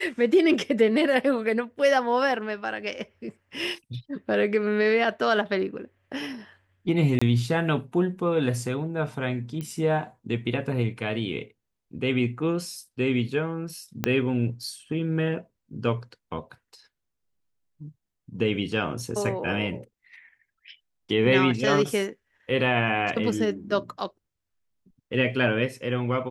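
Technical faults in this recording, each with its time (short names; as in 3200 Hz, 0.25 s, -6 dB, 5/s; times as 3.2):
7.19–7.21 gap 25 ms
9.61 pop -21 dBFS
14.04 pop -9 dBFS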